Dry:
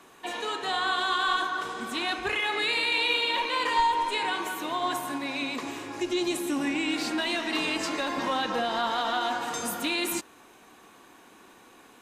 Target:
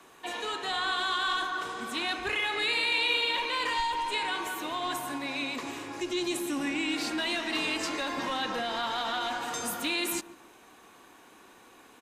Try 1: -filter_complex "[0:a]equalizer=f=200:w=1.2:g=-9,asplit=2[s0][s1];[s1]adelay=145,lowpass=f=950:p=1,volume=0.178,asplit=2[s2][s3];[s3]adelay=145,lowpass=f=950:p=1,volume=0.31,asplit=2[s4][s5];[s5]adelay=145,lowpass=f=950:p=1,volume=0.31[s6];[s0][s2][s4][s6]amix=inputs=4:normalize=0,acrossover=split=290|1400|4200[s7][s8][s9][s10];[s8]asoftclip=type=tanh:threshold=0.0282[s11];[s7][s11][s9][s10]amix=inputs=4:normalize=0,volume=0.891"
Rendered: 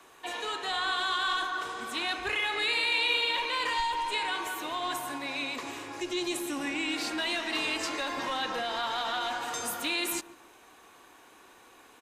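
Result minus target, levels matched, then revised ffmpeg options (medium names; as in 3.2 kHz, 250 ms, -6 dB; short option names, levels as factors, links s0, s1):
250 Hz band -2.5 dB
-filter_complex "[0:a]equalizer=f=200:w=1.2:g=-2.5,asplit=2[s0][s1];[s1]adelay=145,lowpass=f=950:p=1,volume=0.178,asplit=2[s2][s3];[s3]adelay=145,lowpass=f=950:p=1,volume=0.31,asplit=2[s4][s5];[s5]adelay=145,lowpass=f=950:p=1,volume=0.31[s6];[s0][s2][s4][s6]amix=inputs=4:normalize=0,acrossover=split=290|1400|4200[s7][s8][s9][s10];[s8]asoftclip=type=tanh:threshold=0.0282[s11];[s7][s11][s9][s10]amix=inputs=4:normalize=0,volume=0.891"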